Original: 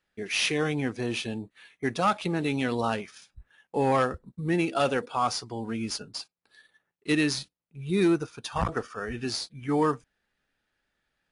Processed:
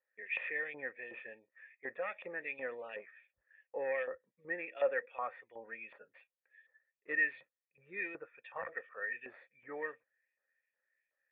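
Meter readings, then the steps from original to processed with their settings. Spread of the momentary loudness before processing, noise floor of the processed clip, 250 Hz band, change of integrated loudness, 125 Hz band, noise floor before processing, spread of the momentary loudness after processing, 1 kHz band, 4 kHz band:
12 LU, under -85 dBFS, -27.5 dB, -11.0 dB, under -35 dB, -81 dBFS, 18 LU, -17.5 dB, under -25 dB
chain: LFO band-pass saw up 2.7 Hz 1000–3200 Hz; vocal tract filter e; gain +11.5 dB

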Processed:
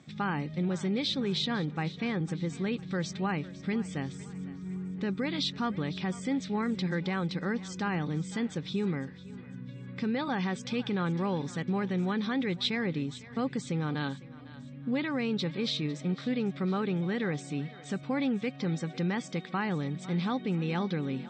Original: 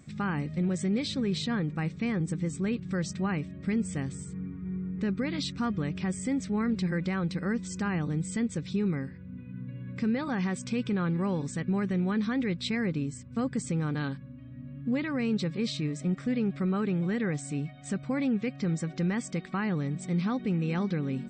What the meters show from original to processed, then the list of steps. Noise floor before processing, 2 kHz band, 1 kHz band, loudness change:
-45 dBFS, +0.5 dB, +2.5 dB, -1.5 dB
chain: speaker cabinet 140–6500 Hz, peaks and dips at 220 Hz -3 dB, 840 Hz +5 dB, 3500 Hz +8 dB; on a send: thinning echo 0.503 s, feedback 47%, level -17 dB

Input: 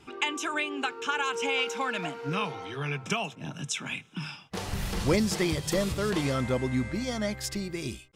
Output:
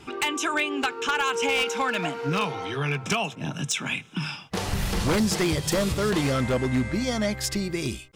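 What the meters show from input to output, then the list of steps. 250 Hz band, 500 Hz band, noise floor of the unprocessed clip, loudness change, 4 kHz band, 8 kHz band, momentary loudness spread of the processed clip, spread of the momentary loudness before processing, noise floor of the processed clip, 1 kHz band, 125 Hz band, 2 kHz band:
+4.0 dB, +4.0 dB, -53 dBFS, +4.5 dB, +4.5 dB, +5.5 dB, 6 LU, 9 LU, -45 dBFS, +4.5 dB, +4.5 dB, +4.5 dB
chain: in parallel at -3 dB: compressor 12:1, threshold -35 dBFS, peak gain reduction 16.5 dB; on the sum: wavefolder -19.5 dBFS; gain +3 dB

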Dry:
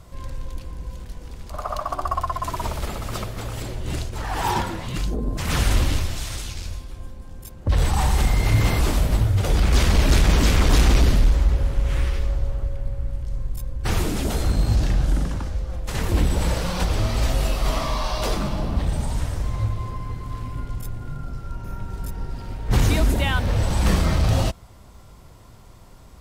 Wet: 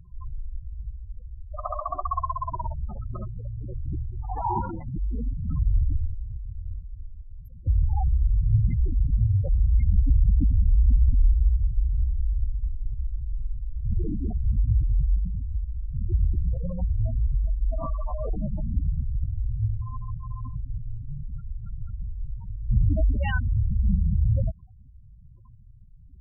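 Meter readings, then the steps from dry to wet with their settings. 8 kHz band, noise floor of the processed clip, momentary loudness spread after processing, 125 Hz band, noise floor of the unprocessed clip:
under -40 dB, -48 dBFS, 15 LU, -3.0 dB, -45 dBFS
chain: spectral gate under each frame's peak -10 dB strong; gain -2 dB

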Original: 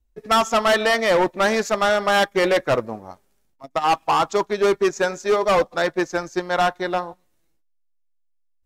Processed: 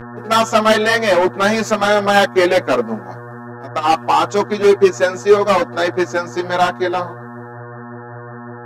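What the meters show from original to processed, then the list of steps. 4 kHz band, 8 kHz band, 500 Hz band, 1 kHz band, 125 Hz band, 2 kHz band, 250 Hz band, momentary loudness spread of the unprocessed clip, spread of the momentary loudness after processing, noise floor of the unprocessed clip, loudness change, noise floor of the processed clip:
+4.0 dB, +4.0 dB, +5.5 dB, +4.5 dB, +7.0 dB, +4.5 dB, +7.0 dB, 8 LU, 20 LU, -65 dBFS, +5.0 dB, -33 dBFS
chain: resonant low shelf 150 Hz -11 dB, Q 1.5; buzz 120 Hz, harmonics 15, -35 dBFS -4 dB/oct; ensemble effect; gain +7 dB

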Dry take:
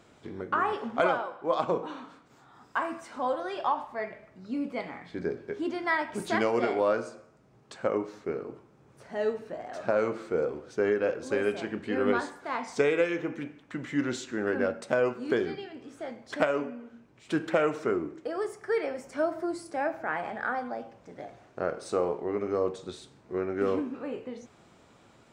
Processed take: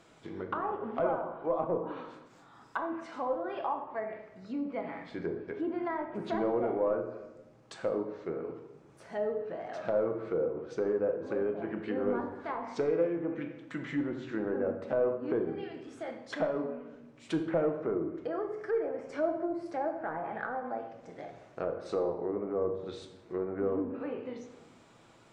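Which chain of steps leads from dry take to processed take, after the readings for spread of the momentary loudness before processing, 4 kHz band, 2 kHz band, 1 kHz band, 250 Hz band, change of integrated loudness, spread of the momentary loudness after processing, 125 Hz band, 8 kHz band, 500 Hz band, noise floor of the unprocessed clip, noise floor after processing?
14 LU, -9.0 dB, -10.0 dB, -5.0 dB, -2.0 dB, -3.5 dB, 13 LU, -2.0 dB, under -10 dB, -2.5 dB, -59 dBFS, -58 dBFS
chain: soft clip -17.5 dBFS, distortion -20 dB; low shelf 460 Hz -3 dB; treble ducked by the level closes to 820 Hz, closed at -29 dBFS; shoebox room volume 480 m³, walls mixed, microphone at 0.68 m; gain -1 dB

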